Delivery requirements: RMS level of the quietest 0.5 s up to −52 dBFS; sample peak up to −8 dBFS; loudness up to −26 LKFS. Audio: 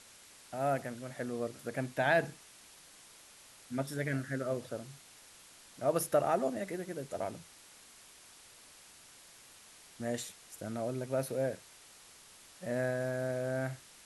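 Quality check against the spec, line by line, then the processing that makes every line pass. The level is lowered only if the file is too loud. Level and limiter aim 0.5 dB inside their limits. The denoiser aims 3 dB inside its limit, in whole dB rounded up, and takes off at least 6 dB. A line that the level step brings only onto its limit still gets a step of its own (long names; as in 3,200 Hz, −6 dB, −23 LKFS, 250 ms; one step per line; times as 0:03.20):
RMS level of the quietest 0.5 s −57 dBFS: in spec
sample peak −15.5 dBFS: in spec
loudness −35.5 LKFS: in spec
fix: no processing needed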